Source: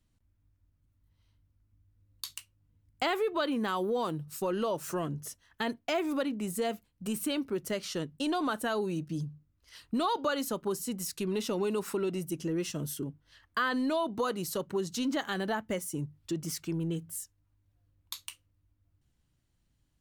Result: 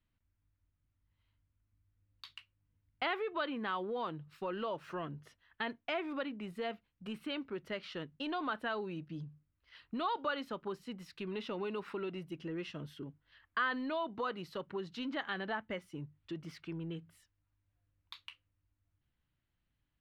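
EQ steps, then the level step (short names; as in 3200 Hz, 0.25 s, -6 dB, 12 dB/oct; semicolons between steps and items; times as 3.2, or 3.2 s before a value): air absorption 400 m; tilt shelf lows -9 dB, about 1300 Hz; high shelf 5000 Hz -11 dB; 0.0 dB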